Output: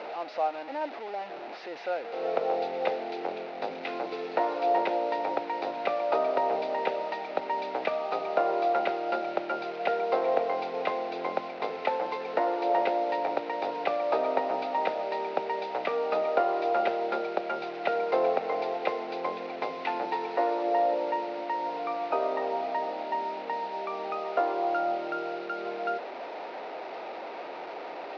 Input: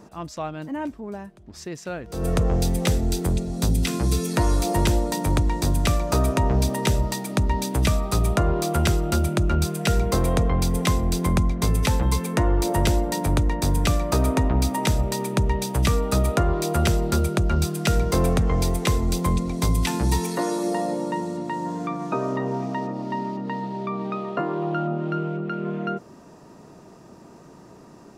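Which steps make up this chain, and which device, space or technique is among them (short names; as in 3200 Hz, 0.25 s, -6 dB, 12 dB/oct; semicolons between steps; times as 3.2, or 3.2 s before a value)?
digital answering machine (BPF 350–3200 Hz; delta modulation 32 kbps, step -32 dBFS; speaker cabinet 470–3600 Hz, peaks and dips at 520 Hz +5 dB, 770 Hz +8 dB, 1100 Hz -7 dB, 1700 Hz -5 dB, 3200 Hz -8 dB)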